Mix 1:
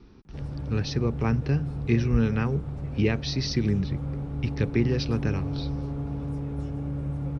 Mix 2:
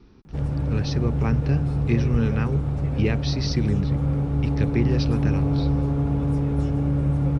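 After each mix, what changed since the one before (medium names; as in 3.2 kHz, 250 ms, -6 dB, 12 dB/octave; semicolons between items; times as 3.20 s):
background +9.0 dB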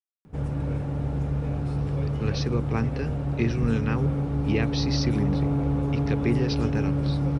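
speech: entry +1.50 s; master: add bass shelf 150 Hz -6 dB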